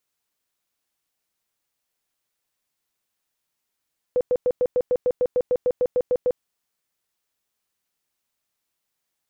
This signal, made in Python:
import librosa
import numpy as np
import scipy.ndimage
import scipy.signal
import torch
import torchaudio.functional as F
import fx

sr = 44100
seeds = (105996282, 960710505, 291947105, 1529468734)

y = fx.tone_burst(sr, hz=498.0, cycles=24, every_s=0.15, bursts=15, level_db=-16.5)